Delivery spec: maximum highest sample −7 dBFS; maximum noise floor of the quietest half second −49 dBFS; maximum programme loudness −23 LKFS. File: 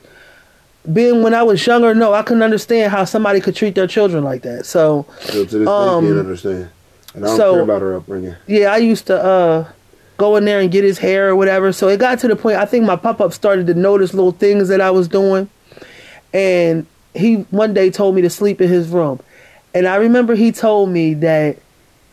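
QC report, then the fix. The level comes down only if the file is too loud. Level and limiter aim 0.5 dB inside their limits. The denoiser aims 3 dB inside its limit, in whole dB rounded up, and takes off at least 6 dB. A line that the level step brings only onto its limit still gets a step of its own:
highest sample −3.5 dBFS: out of spec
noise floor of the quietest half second −51 dBFS: in spec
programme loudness −13.5 LKFS: out of spec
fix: level −10 dB

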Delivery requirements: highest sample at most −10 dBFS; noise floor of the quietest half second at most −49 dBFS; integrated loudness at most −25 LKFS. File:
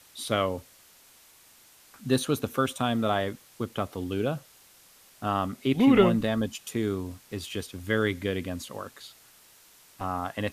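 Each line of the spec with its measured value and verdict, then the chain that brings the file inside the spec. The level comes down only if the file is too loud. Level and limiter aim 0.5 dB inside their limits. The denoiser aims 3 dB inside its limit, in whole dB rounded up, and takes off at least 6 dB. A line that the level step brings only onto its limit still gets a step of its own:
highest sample −8.0 dBFS: out of spec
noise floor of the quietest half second −56 dBFS: in spec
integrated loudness −28.0 LKFS: in spec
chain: brickwall limiter −10.5 dBFS

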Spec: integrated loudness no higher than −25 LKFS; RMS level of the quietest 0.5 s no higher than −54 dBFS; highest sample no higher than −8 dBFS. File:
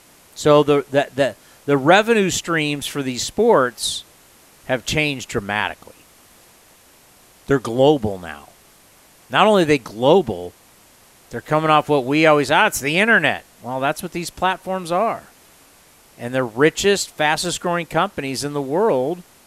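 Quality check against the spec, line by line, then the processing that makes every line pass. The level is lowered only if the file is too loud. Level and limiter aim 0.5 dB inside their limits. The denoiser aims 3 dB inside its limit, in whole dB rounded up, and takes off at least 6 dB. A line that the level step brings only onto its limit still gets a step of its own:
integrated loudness −18.5 LKFS: out of spec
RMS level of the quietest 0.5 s −51 dBFS: out of spec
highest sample −1.5 dBFS: out of spec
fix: level −7 dB

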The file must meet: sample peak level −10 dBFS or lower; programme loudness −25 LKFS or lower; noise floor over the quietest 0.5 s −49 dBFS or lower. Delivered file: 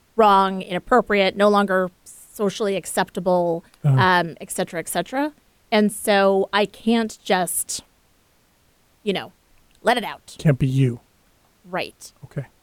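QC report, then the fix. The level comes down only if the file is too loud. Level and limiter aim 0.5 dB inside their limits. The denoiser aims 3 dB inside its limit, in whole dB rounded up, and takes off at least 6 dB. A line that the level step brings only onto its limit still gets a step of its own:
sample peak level −5.0 dBFS: out of spec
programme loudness −21.0 LKFS: out of spec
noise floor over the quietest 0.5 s −60 dBFS: in spec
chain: level −4.5 dB
brickwall limiter −10.5 dBFS

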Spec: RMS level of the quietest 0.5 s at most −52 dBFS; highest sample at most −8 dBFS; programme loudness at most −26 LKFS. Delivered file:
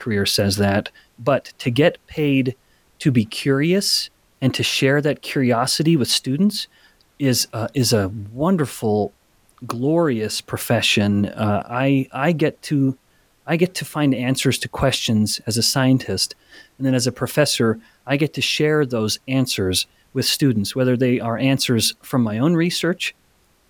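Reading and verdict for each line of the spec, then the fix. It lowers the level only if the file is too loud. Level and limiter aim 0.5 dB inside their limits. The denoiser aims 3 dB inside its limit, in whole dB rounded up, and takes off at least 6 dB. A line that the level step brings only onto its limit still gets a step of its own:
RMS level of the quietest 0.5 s −59 dBFS: in spec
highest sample −4.5 dBFS: out of spec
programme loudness −19.5 LKFS: out of spec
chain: level −7 dB

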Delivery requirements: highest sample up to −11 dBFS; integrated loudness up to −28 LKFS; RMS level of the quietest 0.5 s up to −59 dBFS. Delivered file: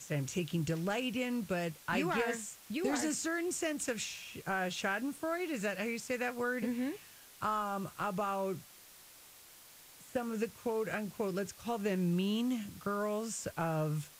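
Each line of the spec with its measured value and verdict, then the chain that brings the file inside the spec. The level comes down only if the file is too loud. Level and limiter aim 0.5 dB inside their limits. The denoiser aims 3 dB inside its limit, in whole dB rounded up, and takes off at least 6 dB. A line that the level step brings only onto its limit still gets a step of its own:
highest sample −20.0 dBFS: in spec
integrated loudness −36.0 LKFS: in spec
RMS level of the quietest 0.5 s −57 dBFS: out of spec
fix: broadband denoise 6 dB, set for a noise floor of −57 dBFS

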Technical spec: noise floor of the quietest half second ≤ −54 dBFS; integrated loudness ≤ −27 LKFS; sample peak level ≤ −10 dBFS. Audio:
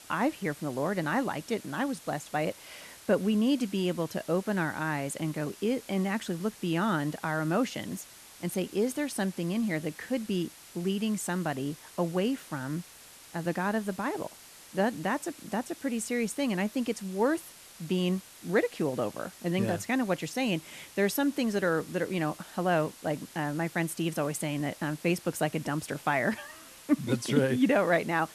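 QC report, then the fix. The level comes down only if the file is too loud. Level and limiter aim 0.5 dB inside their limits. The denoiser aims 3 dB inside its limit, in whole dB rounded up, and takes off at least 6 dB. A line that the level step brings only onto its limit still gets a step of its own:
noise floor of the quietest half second −52 dBFS: out of spec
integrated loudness −30.5 LKFS: in spec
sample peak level −12.0 dBFS: in spec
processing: broadband denoise 6 dB, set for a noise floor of −52 dBFS

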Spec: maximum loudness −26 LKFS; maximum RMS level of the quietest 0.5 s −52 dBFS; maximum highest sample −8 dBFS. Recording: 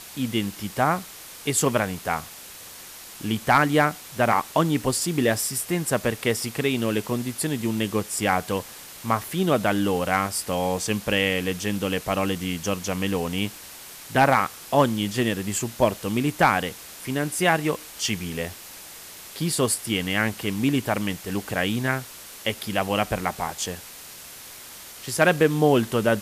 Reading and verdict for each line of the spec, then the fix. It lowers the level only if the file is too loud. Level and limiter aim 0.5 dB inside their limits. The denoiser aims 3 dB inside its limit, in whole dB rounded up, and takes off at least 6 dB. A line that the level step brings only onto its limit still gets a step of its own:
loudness −24.0 LKFS: out of spec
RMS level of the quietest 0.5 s −42 dBFS: out of spec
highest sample −6.0 dBFS: out of spec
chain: broadband denoise 11 dB, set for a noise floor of −42 dBFS
level −2.5 dB

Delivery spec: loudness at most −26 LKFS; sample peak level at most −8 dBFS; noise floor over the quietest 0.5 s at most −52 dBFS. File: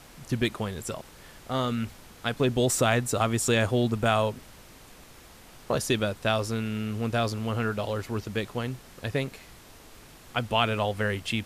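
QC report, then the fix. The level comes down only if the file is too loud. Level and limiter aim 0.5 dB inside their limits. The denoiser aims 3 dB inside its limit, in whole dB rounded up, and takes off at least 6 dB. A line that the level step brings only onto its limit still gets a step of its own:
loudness −28.0 LKFS: in spec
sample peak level −9.0 dBFS: in spec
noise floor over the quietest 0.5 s −50 dBFS: out of spec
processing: broadband denoise 6 dB, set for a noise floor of −50 dBFS

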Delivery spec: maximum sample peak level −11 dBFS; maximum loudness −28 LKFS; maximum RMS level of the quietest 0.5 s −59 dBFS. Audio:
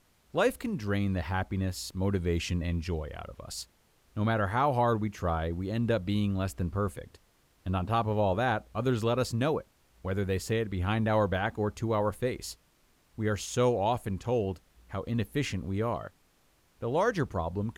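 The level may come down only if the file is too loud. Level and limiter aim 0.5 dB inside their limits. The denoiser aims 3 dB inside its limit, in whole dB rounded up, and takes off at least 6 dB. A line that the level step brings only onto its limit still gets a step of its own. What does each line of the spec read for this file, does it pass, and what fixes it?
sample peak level −14.0 dBFS: in spec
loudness −30.5 LKFS: in spec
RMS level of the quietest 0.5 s −67 dBFS: in spec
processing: no processing needed

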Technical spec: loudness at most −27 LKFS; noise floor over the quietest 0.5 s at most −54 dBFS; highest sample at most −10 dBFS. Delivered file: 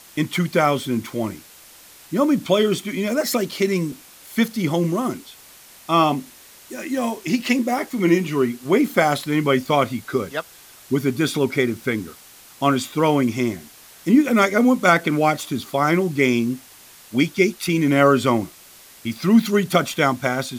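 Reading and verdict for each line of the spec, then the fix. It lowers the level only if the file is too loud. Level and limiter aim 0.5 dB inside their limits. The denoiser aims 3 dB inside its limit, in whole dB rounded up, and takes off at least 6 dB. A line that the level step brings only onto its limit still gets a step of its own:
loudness −20.5 LKFS: out of spec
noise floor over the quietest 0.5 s −46 dBFS: out of spec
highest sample −3.5 dBFS: out of spec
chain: broadband denoise 6 dB, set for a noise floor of −46 dBFS
level −7 dB

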